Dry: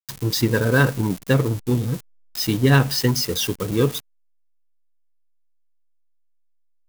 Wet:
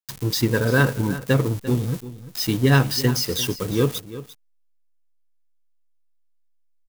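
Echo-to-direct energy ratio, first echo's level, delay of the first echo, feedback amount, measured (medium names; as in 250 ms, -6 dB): -15.0 dB, -15.0 dB, 346 ms, no regular repeats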